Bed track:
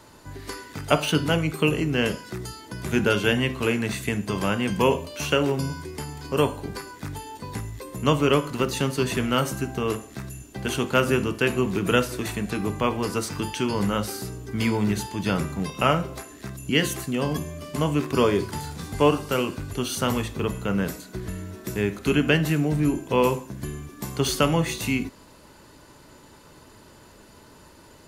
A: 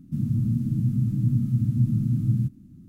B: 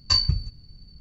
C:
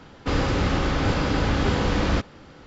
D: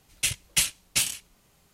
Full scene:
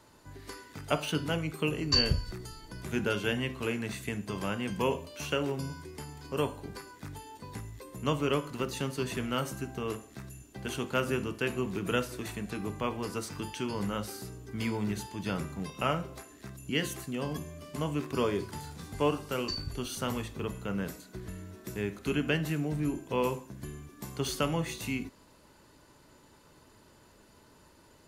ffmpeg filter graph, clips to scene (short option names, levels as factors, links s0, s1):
-filter_complex "[2:a]asplit=2[s0][s1];[0:a]volume=0.355[s2];[s0]atrim=end=1,asetpts=PTS-STARTPTS,volume=0.531,afade=t=in:d=0.004:c=hsin,afade=t=out:st=0.996:d=0.004:c=hsin,adelay=1820[s3];[s1]atrim=end=1,asetpts=PTS-STARTPTS,volume=0.15,afade=t=in:d=0.004:c=hsin,afade=t=out:st=0.996:d=0.004:c=hsin,adelay=19380[s4];[s2][s3][s4]amix=inputs=3:normalize=0"